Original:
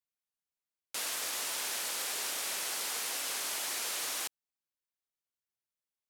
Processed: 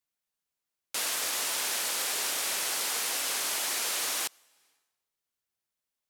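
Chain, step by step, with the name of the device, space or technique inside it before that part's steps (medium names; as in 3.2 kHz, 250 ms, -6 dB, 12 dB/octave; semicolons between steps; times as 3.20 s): compressed reverb return (on a send at -14 dB: reverberation RT60 0.90 s, pre-delay 85 ms + compression 8:1, threshold -50 dBFS, peak gain reduction 16.5 dB); on the sum: trim +5 dB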